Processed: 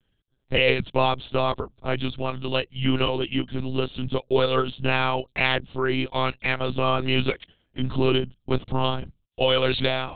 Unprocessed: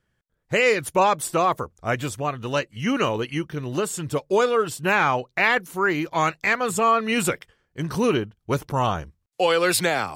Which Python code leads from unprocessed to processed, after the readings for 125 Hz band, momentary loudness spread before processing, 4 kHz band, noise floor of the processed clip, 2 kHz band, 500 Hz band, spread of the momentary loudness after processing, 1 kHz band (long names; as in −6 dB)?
+2.5 dB, 9 LU, +4.5 dB, −72 dBFS, −4.0 dB, −1.5 dB, 8 LU, −5.0 dB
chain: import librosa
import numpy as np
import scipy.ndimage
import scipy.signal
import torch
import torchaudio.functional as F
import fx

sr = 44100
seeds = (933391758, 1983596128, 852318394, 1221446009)

y = fx.curve_eq(x, sr, hz=(170.0, 1900.0, 3100.0), db=(0, -10, 4))
y = fx.lpc_monotone(y, sr, seeds[0], pitch_hz=130.0, order=10)
y = y * 10.0 ** (3.0 / 20.0)